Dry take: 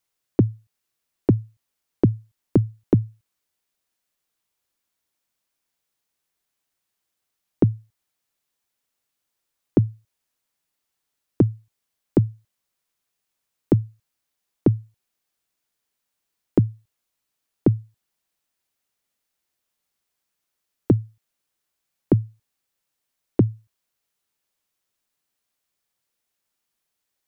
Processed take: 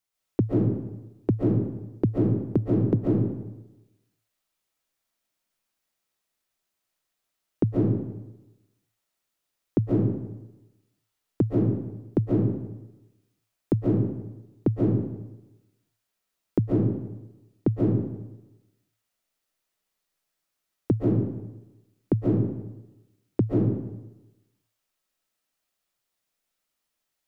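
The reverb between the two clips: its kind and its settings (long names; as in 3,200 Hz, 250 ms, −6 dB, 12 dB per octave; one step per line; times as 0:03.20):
comb and all-pass reverb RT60 1 s, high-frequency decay 0.7×, pre-delay 100 ms, DRR −5 dB
level −6 dB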